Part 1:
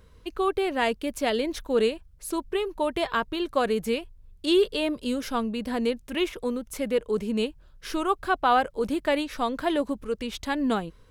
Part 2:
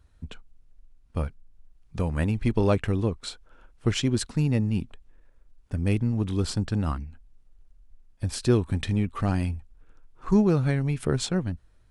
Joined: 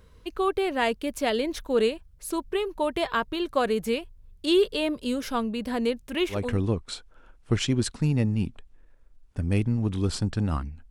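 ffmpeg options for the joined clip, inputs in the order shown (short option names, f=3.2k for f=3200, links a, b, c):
-filter_complex "[0:a]apad=whole_dur=10.9,atrim=end=10.9,atrim=end=6.62,asetpts=PTS-STARTPTS[a];[1:a]atrim=start=2.63:end=7.25,asetpts=PTS-STARTPTS[b];[a][b]acrossfade=d=0.34:c1=qsin:c2=qsin"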